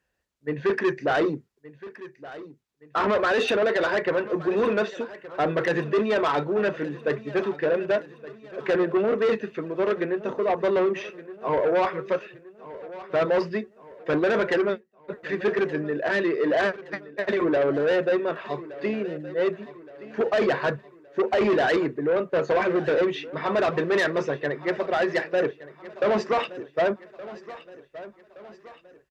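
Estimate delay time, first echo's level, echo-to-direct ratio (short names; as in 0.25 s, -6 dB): 1.17 s, -17.0 dB, -16.0 dB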